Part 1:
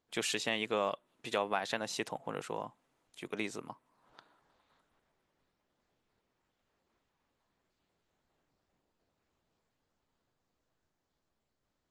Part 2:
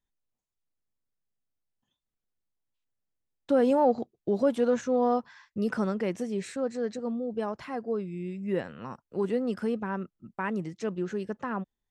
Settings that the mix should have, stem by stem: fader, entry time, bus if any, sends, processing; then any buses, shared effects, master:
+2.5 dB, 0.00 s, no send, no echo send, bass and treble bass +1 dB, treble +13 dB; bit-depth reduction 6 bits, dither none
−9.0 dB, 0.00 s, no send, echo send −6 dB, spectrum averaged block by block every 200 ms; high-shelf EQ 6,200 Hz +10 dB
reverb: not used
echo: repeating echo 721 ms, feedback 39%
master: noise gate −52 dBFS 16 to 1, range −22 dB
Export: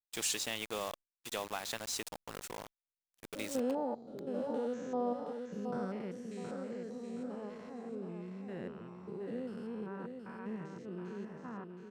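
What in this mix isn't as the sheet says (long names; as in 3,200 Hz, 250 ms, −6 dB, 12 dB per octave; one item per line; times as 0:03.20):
stem 1 +2.5 dB → −7.0 dB
stem 2: missing high-shelf EQ 6,200 Hz +10 dB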